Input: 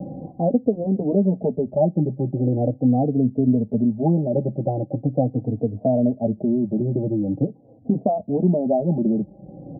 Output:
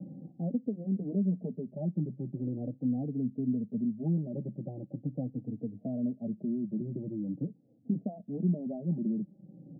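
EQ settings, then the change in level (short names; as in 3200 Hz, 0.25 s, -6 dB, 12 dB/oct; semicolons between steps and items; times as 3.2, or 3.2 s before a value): ladder band-pass 210 Hz, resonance 40%; -2.0 dB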